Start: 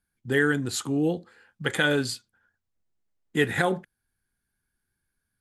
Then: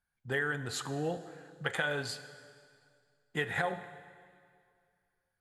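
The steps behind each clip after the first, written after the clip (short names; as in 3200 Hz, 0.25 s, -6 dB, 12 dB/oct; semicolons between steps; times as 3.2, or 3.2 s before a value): EQ curve 160 Hz 0 dB, 290 Hz -8 dB, 680 Hz +8 dB, 11000 Hz -4 dB; compressor, threshold -22 dBFS, peak gain reduction 8 dB; plate-style reverb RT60 2.2 s, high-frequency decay 0.9×, DRR 11.5 dB; gain -6.5 dB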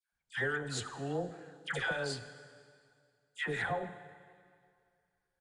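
added harmonics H 6 -28 dB, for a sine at -14.5 dBFS; downsampling 22050 Hz; dispersion lows, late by 0.126 s, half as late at 1100 Hz; gain -1.5 dB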